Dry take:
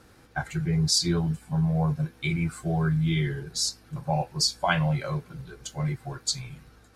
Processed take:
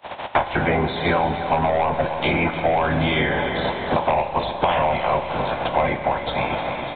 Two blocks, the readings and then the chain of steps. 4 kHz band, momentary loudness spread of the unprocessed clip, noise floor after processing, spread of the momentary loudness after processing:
0.0 dB, 12 LU, −31 dBFS, 4 LU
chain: ceiling on every frequency bin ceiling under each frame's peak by 24 dB
noise gate −52 dBFS, range −40 dB
high-pass filter 51 Hz
flat-topped bell 740 Hz +12.5 dB 1.1 octaves
downward compressor 2 to 1, threshold −20 dBFS, peak gain reduction 6 dB
soft clipping −18 dBFS, distortion −12 dB
on a send: repeating echo 295 ms, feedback 38%, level −15 dB
on the sum: four-comb reverb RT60 1.6 s, combs from 30 ms, DRR 10 dB
downsampling to 8,000 Hz
multiband upward and downward compressor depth 100%
level +5.5 dB

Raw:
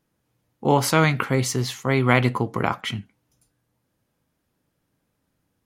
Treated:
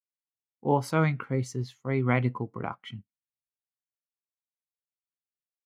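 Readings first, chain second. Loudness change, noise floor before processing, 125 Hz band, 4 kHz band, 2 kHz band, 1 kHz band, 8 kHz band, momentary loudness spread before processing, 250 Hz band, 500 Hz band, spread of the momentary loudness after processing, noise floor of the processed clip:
−7.0 dB, −75 dBFS, −5.5 dB, −16.5 dB, −10.5 dB, −8.0 dB, −16.5 dB, 10 LU, −6.5 dB, −7.0 dB, 13 LU, below −85 dBFS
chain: mu-law and A-law mismatch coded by A
every bin expanded away from the loudest bin 1.5 to 1
level −8 dB

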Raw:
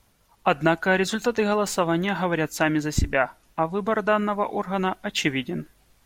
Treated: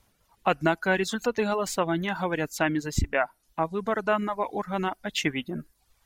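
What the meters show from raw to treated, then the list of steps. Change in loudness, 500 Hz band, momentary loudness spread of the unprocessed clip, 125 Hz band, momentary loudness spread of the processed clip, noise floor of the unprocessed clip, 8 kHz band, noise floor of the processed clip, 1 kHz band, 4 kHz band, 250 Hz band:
−3.5 dB, −3.5 dB, 5 LU, −4.0 dB, 5 LU, −63 dBFS, −3.0 dB, −70 dBFS, −3.5 dB, −3.5 dB, −4.0 dB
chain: reverb reduction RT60 0.61 s
level −3 dB

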